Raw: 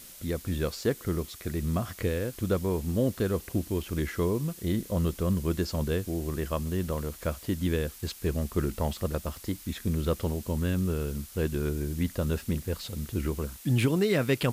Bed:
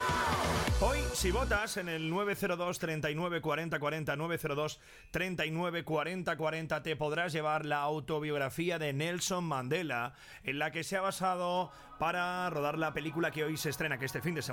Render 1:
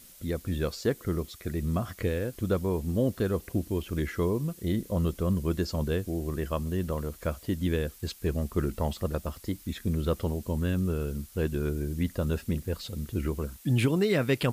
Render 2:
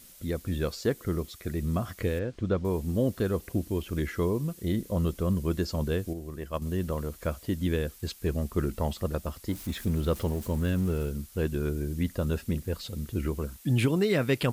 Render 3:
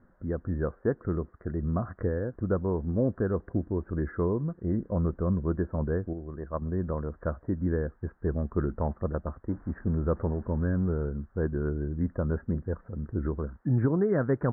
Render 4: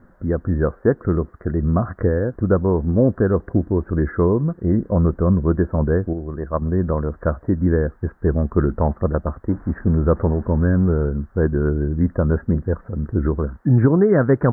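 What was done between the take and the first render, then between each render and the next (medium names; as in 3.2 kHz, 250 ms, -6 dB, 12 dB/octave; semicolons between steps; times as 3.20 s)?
noise reduction 6 dB, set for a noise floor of -48 dBFS
2.19–2.65 s: distance through air 130 m; 6.13–6.62 s: gate -29 dBFS, range -7 dB; 9.49–11.09 s: jump at every zero crossing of -41 dBFS
steep low-pass 1.7 kHz 72 dB/octave
trim +10.5 dB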